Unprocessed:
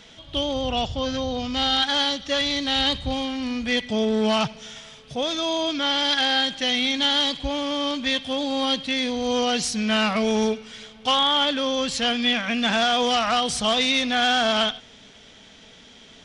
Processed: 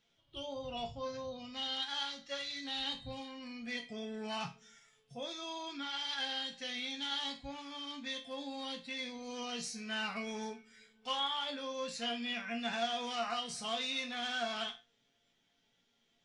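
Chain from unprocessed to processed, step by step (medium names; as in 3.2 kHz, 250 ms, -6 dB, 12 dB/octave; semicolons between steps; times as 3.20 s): spectral noise reduction 12 dB; chord resonator A#2 minor, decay 0.26 s; trim -2.5 dB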